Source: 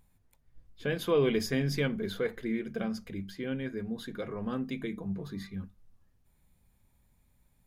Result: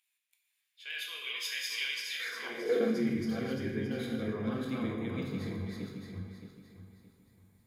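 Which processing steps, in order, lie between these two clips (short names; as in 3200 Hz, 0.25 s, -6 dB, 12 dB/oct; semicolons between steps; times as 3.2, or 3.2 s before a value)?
regenerating reverse delay 0.31 s, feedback 54%, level 0 dB; non-linear reverb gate 0.31 s falling, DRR 1 dB; high-pass sweep 2600 Hz -> 100 Hz, 2.15–3.19; gain -5.5 dB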